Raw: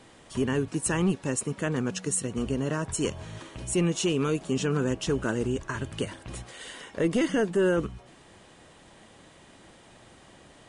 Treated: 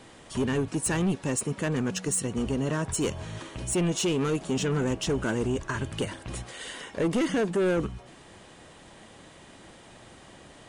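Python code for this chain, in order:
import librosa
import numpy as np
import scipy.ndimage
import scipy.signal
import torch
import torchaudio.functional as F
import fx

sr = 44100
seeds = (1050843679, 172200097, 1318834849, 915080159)

y = 10.0 ** (-23.5 / 20.0) * np.tanh(x / 10.0 ** (-23.5 / 20.0))
y = F.gain(torch.from_numpy(y), 3.0).numpy()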